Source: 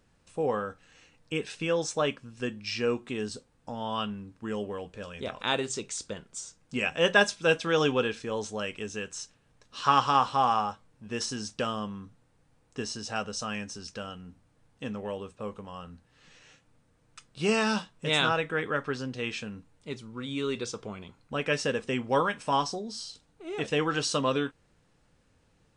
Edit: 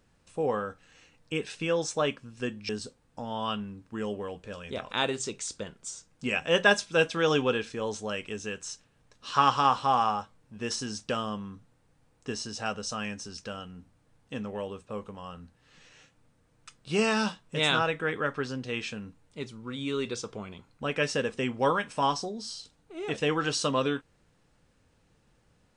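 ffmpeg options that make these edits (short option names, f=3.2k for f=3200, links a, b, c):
-filter_complex "[0:a]asplit=2[a][b];[a]atrim=end=2.692[c];[b]atrim=start=3.188[d];[c][d]acrossfade=d=0.004:c1=hsin:c2=hsin"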